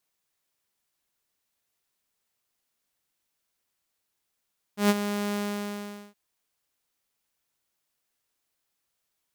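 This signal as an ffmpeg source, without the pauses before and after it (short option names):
-f lavfi -i "aevalsrc='0.2*(2*mod(205*t,1)-1)':d=1.369:s=44100,afade=t=in:d=0.127,afade=t=out:st=0.127:d=0.036:silence=0.299,afade=t=out:st=0.58:d=0.789"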